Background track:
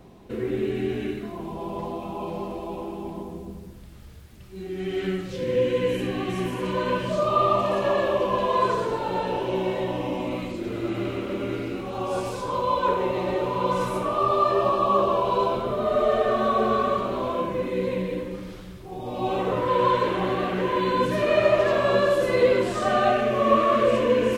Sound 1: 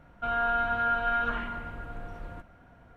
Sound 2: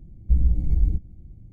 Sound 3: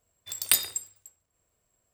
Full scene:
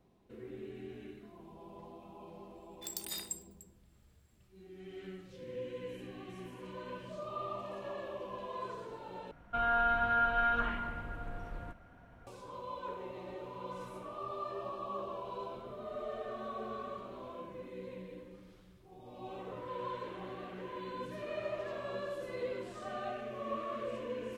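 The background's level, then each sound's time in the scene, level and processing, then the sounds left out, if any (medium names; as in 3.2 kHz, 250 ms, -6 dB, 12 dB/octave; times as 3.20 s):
background track -19.5 dB
2.55 s: add 3 -10.5 dB + compressor with a negative ratio -29 dBFS
9.31 s: replace with 1 -2.5 dB
not used: 2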